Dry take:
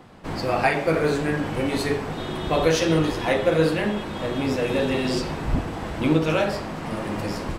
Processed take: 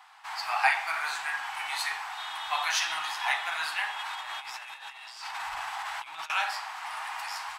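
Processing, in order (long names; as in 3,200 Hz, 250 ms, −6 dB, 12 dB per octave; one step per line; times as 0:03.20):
elliptic high-pass filter 810 Hz, stop band 40 dB
0:03.99–0:06.30: compressor whose output falls as the input rises −38 dBFS, ratio −0.5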